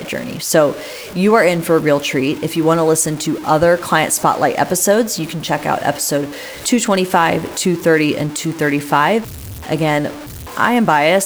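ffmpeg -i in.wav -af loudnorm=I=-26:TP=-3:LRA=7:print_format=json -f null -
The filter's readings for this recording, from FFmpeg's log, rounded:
"input_i" : "-15.6",
"input_tp" : "-1.1",
"input_lra" : "1.8",
"input_thresh" : "-25.9",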